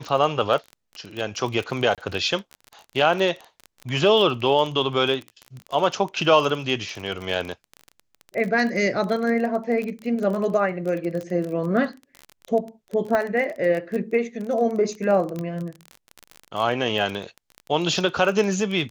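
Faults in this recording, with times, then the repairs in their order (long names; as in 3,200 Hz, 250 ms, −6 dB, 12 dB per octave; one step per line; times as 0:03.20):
surface crackle 24 per second −27 dBFS
0:01.95–0:01.98: drop-out 27 ms
0:13.15: click −12 dBFS
0:15.39: click −18 dBFS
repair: click removal
repair the gap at 0:01.95, 27 ms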